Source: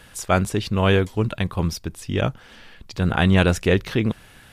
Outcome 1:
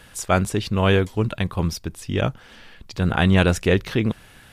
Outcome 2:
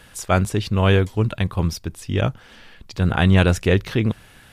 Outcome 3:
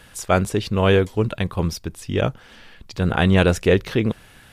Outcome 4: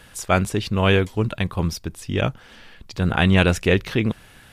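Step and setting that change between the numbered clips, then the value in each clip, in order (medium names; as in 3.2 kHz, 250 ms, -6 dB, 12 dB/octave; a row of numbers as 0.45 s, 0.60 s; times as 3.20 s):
dynamic bell, frequency: 8.1 kHz, 100 Hz, 470 Hz, 2.5 kHz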